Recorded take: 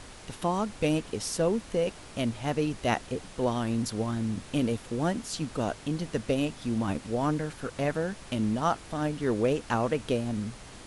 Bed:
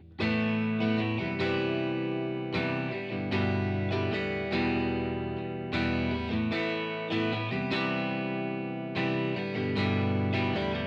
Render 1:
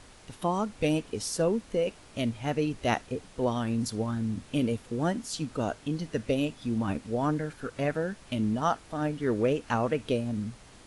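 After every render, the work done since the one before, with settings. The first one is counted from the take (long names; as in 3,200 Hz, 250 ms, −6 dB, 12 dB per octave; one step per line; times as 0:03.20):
noise reduction from a noise print 6 dB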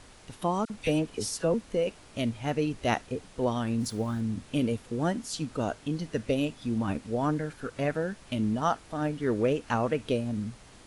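0:00.65–0:01.54: all-pass dispersion lows, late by 49 ms, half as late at 1,600 Hz
0:03.80–0:04.21: centre clipping without the shift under −47.5 dBFS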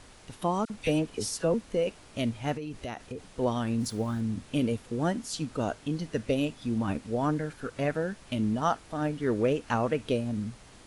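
0:02.55–0:03.27: downward compressor 12 to 1, threshold −32 dBFS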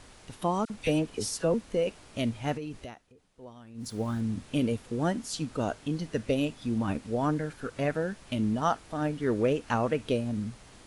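0:02.60–0:04.15: duck −19.5 dB, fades 0.41 s equal-power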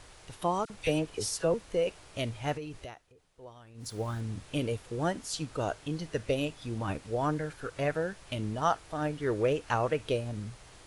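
parametric band 230 Hz −11.5 dB 0.57 octaves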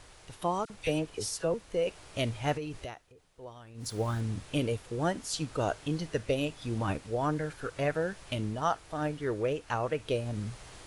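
speech leveller within 4 dB 0.5 s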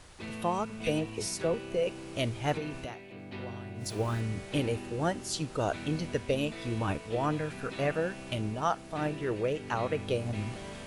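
mix in bed −13 dB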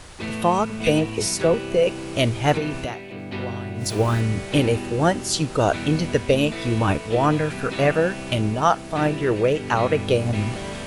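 level +11 dB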